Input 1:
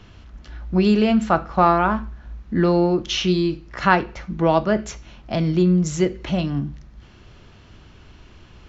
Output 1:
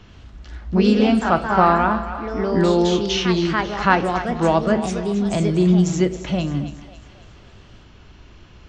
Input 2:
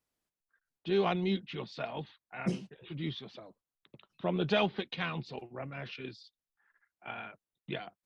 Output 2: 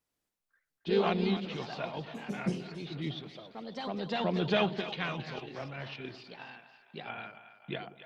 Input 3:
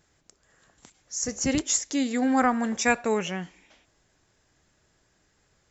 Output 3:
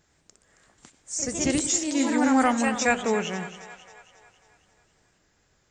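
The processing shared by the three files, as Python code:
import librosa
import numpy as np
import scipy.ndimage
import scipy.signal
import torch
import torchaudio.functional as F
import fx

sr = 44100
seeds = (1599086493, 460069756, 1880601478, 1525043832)

y = fx.echo_split(x, sr, split_hz=560.0, low_ms=94, high_ms=272, feedback_pct=52, wet_db=-12.0)
y = fx.echo_pitch(y, sr, ms=92, semitones=2, count=2, db_per_echo=-6.0)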